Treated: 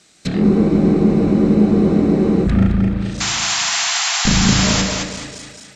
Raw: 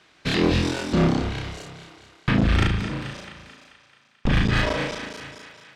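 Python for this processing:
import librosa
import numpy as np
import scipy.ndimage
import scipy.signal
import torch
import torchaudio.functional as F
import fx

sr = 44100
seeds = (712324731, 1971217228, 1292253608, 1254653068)

y = fx.high_shelf_res(x, sr, hz=4900.0, db=9.5, q=1.5)
y = fx.wow_flutter(y, sr, seeds[0], rate_hz=2.1, depth_cents=20.0)
y = fx.graphic_eq_31(y, sr, hz=(200, 1000, 1600, 4000, 8000), db=(11, -9, -4, 7, 7))
y = fx.env_lowpass_down(y, sr, base_hz=1400.0, full_db=-19.0)
y = fx.spec_paint(y, sr, seeds[1], shape='noise', start_s=3.2, length_s=1.62, low_hz=660.0, high_hz=7600.0, level_db=-22.0)
y = fx.echo_feedback(y, sr, ms=216, feedback_pct=33, wet_db=-4)
y = fx.spec_freeze(y, sr, seeds[2], at_s=0.44, hold_s=2.02)
y = F.gain(torch.from_numpy(y), 1.5).numpy()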